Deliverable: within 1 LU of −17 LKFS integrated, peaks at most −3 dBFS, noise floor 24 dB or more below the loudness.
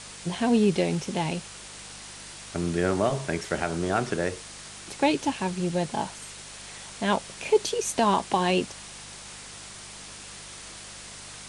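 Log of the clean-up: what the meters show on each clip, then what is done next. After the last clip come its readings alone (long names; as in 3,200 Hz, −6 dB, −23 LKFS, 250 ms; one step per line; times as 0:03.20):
mains hum 50 Hz; hum harmonics up to 200 Hz; level of the hum −50 dBFS; background noise floor −43 dBFS; target noise floor −51 dBFS; integrated loudness −26.5 LKFS; sample peak −9.5 dBFS; target loudness −17.0 LKFS
→ hum removal 50 Hz, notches 4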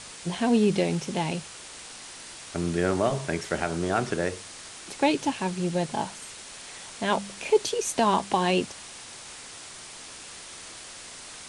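mains hum none found; background noise floor −43 dBFS; target noise floor −51 dBFS
→ broadband denoise 8 dB, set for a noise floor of −43 dBFS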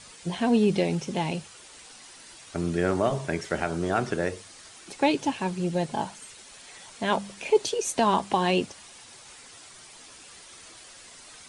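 background noise floor −49 dBFS; target noise floor −51 dBFS
→ broadband denoise 6 dB, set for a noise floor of −49 dBFS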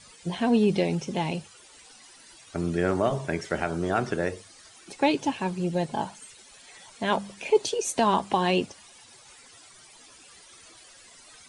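background noise floor −52 dBFS; integrated loudness −27.0 LKFS; sample peak −9.5 dBFS; target loudness −17.0 LKFS
→ level +10 dB
brickwall limiter −3 dBFS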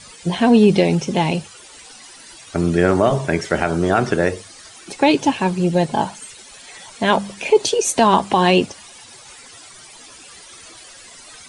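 integrated loudness −17.5 LKFS; sample peak −3.0 dBFS; background noise floor −42 dBFS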